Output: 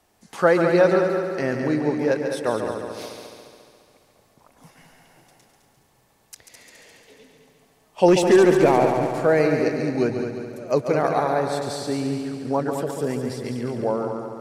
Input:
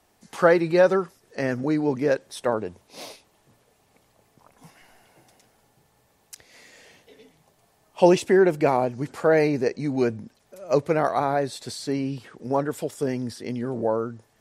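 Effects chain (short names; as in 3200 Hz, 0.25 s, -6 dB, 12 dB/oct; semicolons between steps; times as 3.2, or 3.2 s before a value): 8.08–8.84 sample leveller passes 1; multi-head echo 70 ms, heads second and third, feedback 59%, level -7.5 dB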